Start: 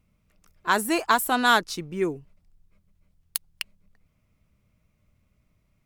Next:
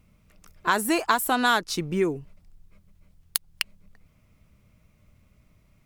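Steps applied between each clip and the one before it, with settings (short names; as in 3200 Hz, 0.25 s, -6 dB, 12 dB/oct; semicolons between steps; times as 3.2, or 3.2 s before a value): compressor 2.5:1, threshold -30 dBFS, peak gain reduction 10.5 dB; gain +7.5 dB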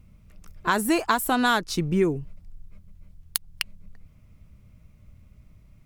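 low shelf 200 Hz +11 dB; gain -1 dB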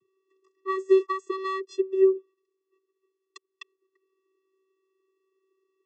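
vocoder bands 16, square 382 Hz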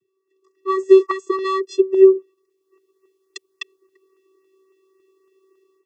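LFO notch saw up 3.6 Hz 940–3900 Hz; AGC gain up to 14 dB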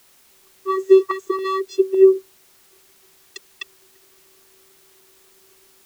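added noise white -53 dBFS; gain -1.5 dB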